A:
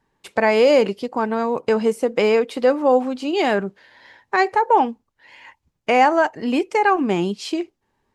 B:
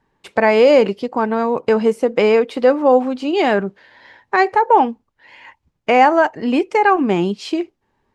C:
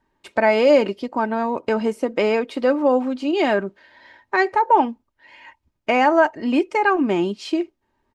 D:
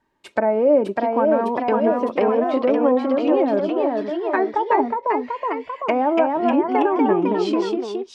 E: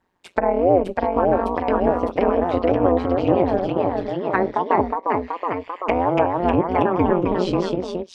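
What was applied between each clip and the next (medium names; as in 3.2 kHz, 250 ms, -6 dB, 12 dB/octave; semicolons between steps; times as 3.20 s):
treble shelf 6.1 kHz -10.5 dB; trim +3.5 dB
comb 3.2 ms, depth 41%; trim -4 dB
low-pass that closes with the level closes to 740 Hz, closed at -15 dBFS; bass shelf 82 Hz -8.5 dB; ever faster or slower copies 620 ms, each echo +1 st, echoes 3
AM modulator 180 Hz, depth 100%; trim +3.5 dB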